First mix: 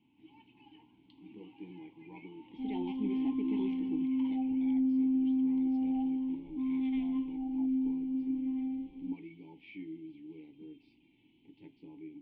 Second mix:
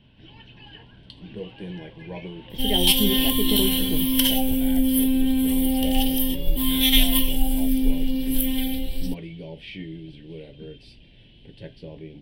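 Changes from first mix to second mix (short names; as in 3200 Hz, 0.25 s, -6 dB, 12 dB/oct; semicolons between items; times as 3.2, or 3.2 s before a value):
second sound: remove LPF 1100 Hz 12 dB/oct; master: remove vowel filter u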